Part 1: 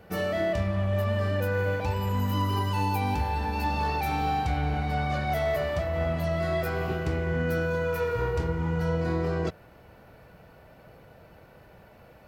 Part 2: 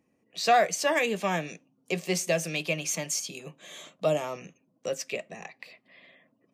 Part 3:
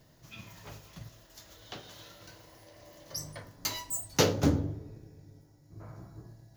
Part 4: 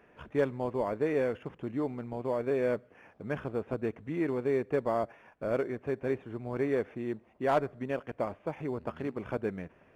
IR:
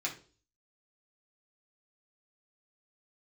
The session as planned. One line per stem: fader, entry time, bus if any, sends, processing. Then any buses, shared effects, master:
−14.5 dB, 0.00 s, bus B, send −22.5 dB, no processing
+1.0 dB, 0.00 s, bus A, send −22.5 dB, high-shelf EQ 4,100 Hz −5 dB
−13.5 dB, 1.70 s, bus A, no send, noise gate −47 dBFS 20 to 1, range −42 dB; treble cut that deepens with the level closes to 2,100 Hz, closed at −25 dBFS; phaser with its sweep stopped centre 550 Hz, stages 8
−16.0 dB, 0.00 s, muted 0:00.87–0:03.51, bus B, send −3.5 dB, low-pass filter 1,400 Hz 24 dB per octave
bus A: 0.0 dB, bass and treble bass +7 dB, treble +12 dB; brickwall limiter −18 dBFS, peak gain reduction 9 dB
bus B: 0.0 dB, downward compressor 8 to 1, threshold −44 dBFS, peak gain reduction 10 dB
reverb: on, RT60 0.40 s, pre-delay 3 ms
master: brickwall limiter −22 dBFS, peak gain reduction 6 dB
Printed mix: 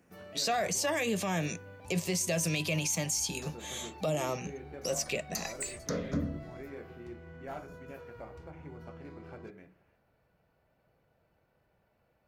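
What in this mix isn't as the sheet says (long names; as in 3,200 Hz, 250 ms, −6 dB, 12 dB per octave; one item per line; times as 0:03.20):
stem 1 −14.5 dB → −20.5 dB
stem 3 −13.5 dB → −5.5 dB
stem 4: missing low-pass filter 1,400 Hz 24 dB per octave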